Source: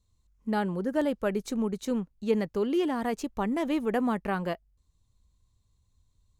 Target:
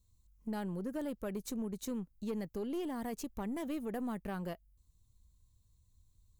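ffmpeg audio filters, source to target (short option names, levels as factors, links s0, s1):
-af "lowshelf=f=290:g=8.5,acompressor=threshold=0.0282:ratio=2,aemphasis=mode=production:type=50fm,aeval=exprs='(tanh(15.8*val(0)+0.3)-tanh(0.3))/15.8':c=same,volume=0.473"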